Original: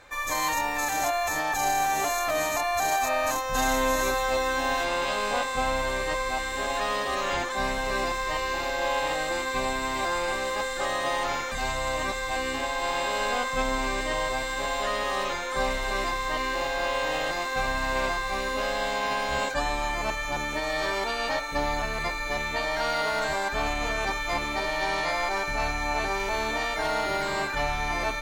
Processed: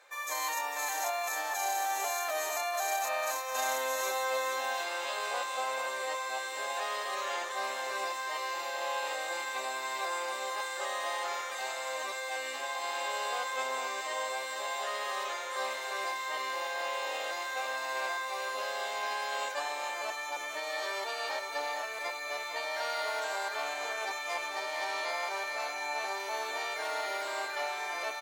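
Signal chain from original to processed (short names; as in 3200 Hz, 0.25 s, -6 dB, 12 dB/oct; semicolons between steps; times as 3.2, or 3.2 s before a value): 24.22–24.95 self-modulated delay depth 0.053 ms; HPF 430 Hz 24 dB/oct; high shelf 6200 Hz +5 dB; on a send: echo 0.45 s -8.5 dB; on the sum: gain -7.5 dB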